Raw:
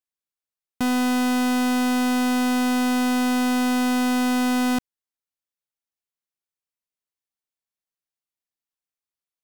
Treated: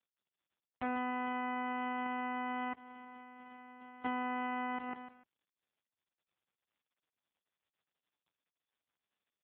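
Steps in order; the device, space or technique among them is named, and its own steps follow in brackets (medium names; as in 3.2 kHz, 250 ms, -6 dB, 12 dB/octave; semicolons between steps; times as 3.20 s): feedback delay 149 ms, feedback 29%, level -9.5 dB; 2.73–4.04 s: expander -8 dBFS; voicemail (band-pass 410–2700 Hz; compression 8:1, threshold -31 dBFS, peak gain reduction 9 dB; AMR-NB 4.75 kbps 8 kHz)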